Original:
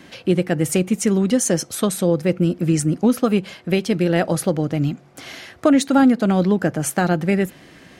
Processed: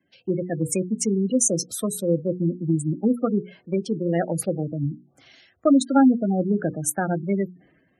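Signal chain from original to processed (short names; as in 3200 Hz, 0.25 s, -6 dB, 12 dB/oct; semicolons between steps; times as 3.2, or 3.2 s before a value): notches 60/120/180/240/300/360/420/480 Hz; spectral gate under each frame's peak -15 dB strong; three-band expander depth 70%; gain -4 dB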